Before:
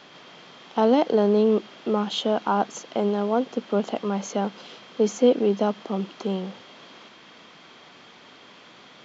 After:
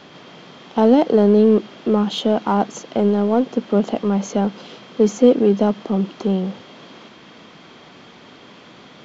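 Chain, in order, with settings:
low-shelf EQ 470 Hz +9 dB
in parallel at −9.5 dB: hard clipping −24 dBFS, distortion −3 dB

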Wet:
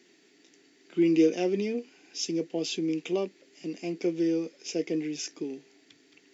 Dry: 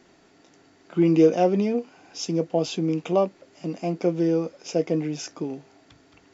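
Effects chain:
high-pass filter 330 Hz 12 dB per octave
flat-topped bell 870 Hz −14 dB

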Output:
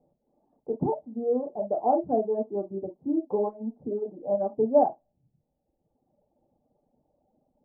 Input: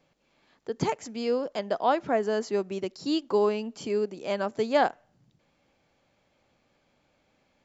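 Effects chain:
elliptic low-pass filter 790 Hz, stop band 80 dB
convolution reverb, pre-delay 3 ms, DRR 0 dB
reverb reduction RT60 1.2 s

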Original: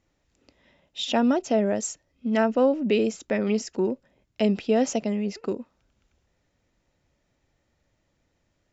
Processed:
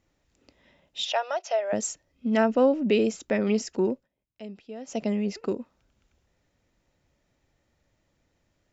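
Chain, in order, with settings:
0:01.05–0:01.73: elliptic band-pass filter 600–6,100 Hz, stop band 40 dB
0:03.91–0:05.04: duck −18 dB, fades 0.17 s

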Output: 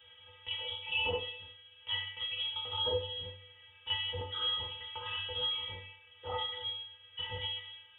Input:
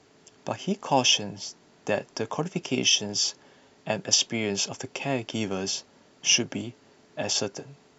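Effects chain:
stiff-string resonator 320 Hz, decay 0.53 s, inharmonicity 0.002
dense smooth reverb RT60 0.63 s, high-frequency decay 0.65×, DRR −0.5 dB
voice inversion scrambler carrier 3,600 Hz
multiband upward and downward compressor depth 40%
level +9 dB

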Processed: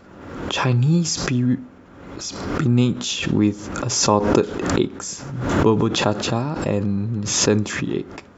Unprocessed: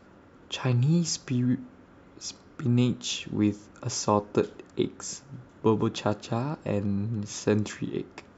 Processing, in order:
background raised ahead of every attack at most 47 dB per second
level +6 dB

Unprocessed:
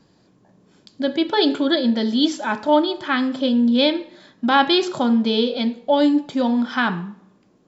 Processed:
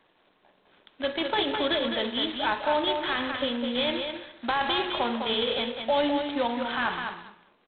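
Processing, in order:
high-pass filter 570 Hz 12 dB per octave
dynamic equaliser 1,400 Hz, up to −4 dB, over −40 dBFS, Q 5.8
brickwall limiter −16.5 dBFS, peak gain reduction 11 dB
on a send: repeating echo 205 ms, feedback 15%, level −6 dB
on the sum: G.726 16 kbit/s 8,000 Hz

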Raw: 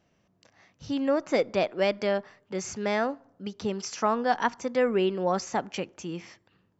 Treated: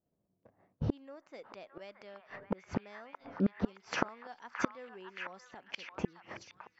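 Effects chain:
low-pass that shuts in the quiet parts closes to 530 Hz, open at −22.5 dBFS
downward expander −54 dBFS
low-shelf EQ 370 Hz −6 dB
in parallel at −2 dB: downward compressor 8 to 1, threshold −51 dBFS, peak gain reduction 29 dB
on the sum: gate with flip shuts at −31 dBFS, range −38 dB
on a send: echo through a band-pass that steps 621 ms, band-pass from 1,300 Hz, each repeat 0.7 octaves, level −1 dB
on the sum: level +14.5 dB

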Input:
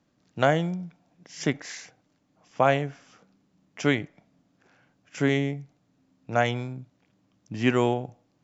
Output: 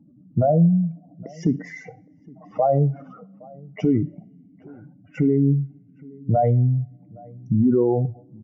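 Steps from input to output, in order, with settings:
expanding power law on the bin magnitudes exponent 3
in parallel at +3 dB: downward compressor, threshold −33 dBFS, peak gain reduction 14.5 dB
on the sum: Savitzky-Golay smoothing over 65 samples
brickwall limiter −20 dBFS, peak gain reduction 10 dB
slap from a distant wall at 140 metres, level −24 dB
on a send at −14.5 dB: convolution reverb, pre-delay 3 ms
on the sum: level +9 dB

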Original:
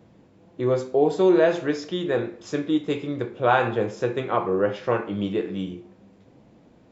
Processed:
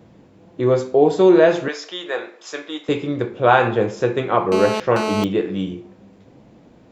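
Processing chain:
0:01.68–0:02.89: high-pass filter 720 Hz 12 dB per octave
0:04.52–0:05.24: phone interference −28 dBFS
level +5.5 dB

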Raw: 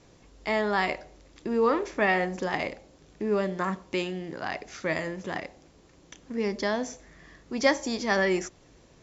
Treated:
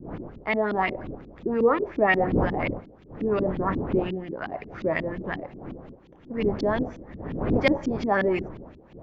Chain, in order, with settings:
wind on the microphone 340 Hz −35 dBFS
auto-filter low-pass saw up 5.6 Hz 220–3,500 Hz

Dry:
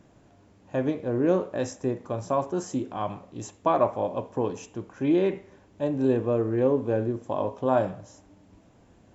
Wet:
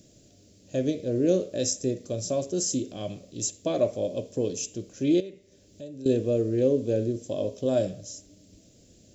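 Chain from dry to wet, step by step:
0:05.20–0:06.06: downward compressor 2.5 to 1, threshold −45 dBFS, peak gain reduction 16 dB
drawn EQ curve 610 Hz 0 dB, 890 Hz −24 dB, 4,700 Hz +14 dB

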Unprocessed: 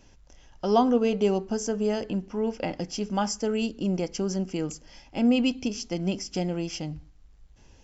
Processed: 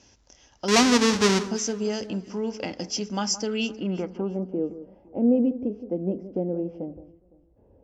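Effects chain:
0:00.68–0:01.49: each half-wave held at its own peak
high-pass filter 72 Hz 12 dB per octave
parametric band 150 Hz −12.5 dB 0.23 octaves
low-pass filter sweep 5,900 Hz → 530 Hz, 0:03.37–0:04.48
dynamic equaliser 680 Hz, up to −5 dB, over −36 dBFS, Q 1.5
on a send: delay that swaps between a low-pass and a high-pass 170 ms, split 1,500 Hz, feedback 50%, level −13.5 dB

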